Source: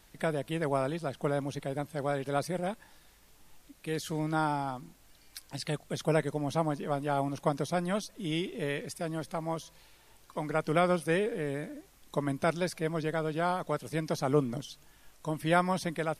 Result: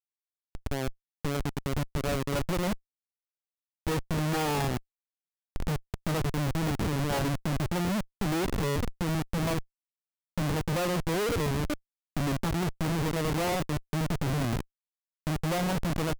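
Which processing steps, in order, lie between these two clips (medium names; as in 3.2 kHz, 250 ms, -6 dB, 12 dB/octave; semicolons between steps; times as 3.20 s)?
fade-in on the opening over 3.04 s; harmonic-percussive split percussive -16 dB; Schmitt trigger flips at -39 dBFS; trim +8 dB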